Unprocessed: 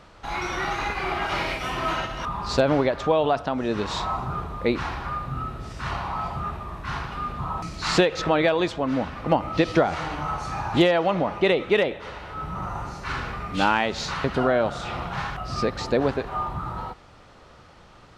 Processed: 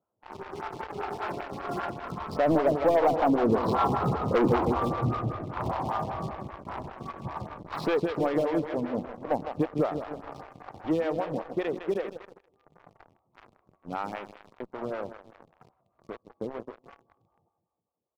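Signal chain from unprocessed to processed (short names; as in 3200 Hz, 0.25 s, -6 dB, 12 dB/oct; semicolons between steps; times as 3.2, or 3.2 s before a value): Wiener smoothing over 25 samples; Doppler pass-by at 4.43, 26 m/s, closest 20 m; HPF 78 Hz 24 dB/oct; high shelf 2800 Hz -11 dB; feedback echo 0.158 s, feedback 54%, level -9 dB; sample leveller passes 1; brick-wall FIR low-pass 5800 Hz; sample leveller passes 3; photocell phaser 5.1 Hz; gain -2.5 dB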